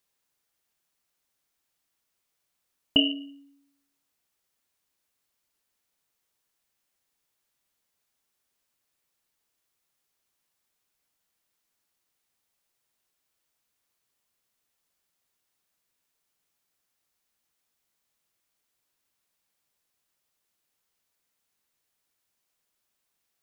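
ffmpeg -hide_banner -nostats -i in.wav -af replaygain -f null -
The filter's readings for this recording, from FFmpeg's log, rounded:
track_gain = +64.0 dB
track_peak = 0.375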